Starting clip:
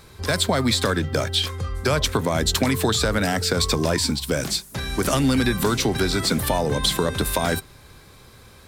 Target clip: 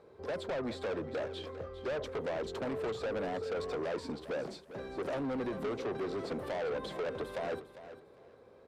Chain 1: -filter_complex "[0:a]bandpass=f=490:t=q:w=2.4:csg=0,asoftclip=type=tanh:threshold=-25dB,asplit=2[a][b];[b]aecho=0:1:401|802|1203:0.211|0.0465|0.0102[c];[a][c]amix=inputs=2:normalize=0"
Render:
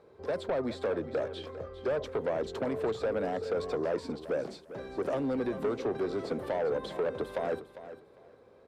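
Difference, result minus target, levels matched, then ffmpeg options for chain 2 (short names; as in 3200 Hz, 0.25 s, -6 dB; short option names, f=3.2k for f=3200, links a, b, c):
soft clip: distortion -6 dB
-filter_complex "[0:a]bandpass=f=490:t=q:w=2.4:csg=0,asoftclip=type=tanh:threshold=-32.5dB,asplit=2[a][b];[b]aecho=0:1:401|802|1203:0.211|0.0465|0.0102[c];[a][c]amix=inputs=2:normalize=0"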